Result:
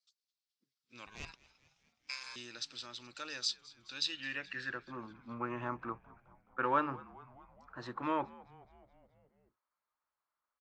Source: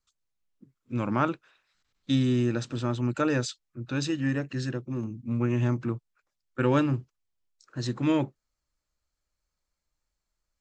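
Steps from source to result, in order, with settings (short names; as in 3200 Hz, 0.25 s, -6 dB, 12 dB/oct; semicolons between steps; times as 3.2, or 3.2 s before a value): bell 6800 Hz -6 dB 0.35 oct; in parallel at -2 dB: limiter -18.5 dBFS, peak gain reduction 7.5 dB; on the sum: hard clip -10.5 dBFS, distortion -36 dB; band-pass sweep 4800 Hz -> 1100 Hz, 3.93–4.96; 1.06–2.36 ring modulator 1300 Hz; on a send: frequency-shifting echo 0.212 s, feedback 65%, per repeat -85 Hz, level -21 dB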